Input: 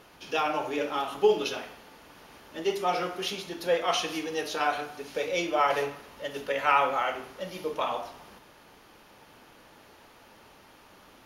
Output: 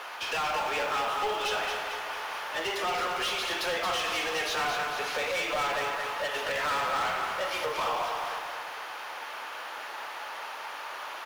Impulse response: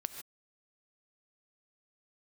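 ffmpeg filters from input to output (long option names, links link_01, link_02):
-filter_complex "[0:a]highpass=840,highshelf=frequency=2200:gain=-11,acompressor=threshold=-44dB:ratio=2.5,asplit=2[link_01][link_02];[link_02]highpass=frequency=720:poles=1,volume=29dB,asoftclip=type=tanh:threshold=-22.5dB[link_03];[link_01][link_03]amix=inputs=2:normalize=0,lowpass=frequency=6200:poles=1,volume=-6dB,acrusher=bits=6:mode=log:mix=0:aa=0.000001,aecho=1:1:223|446|669|892|1115|1338|1561:0.501|0.266|0.141|0.0746|0.0395|0.021|0.0111"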